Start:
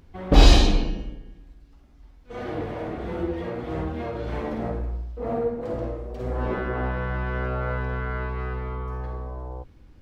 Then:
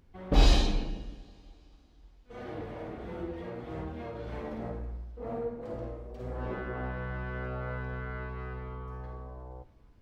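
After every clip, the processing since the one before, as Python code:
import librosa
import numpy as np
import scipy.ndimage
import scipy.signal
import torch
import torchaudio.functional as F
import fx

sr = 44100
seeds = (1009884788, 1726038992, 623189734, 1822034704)

y = fx.rev_double_slope(x, sr, seeds[0], early_s=0.47, late_s=3.8, knee_db=-16, drr_db=14.0)
y = F.gain(torch.from_numpy(y), -9.0).numpy()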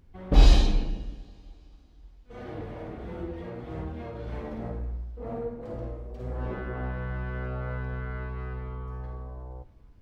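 y = fx.low_shelf(x, sr, hz=170.0, db=6.0)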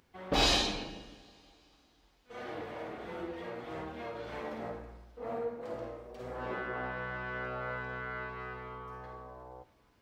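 y = fx.highpass(x, sr, hz=860.0, slope=6)
y = F.gain(torch.from_numpy(y), 4.5).numpy()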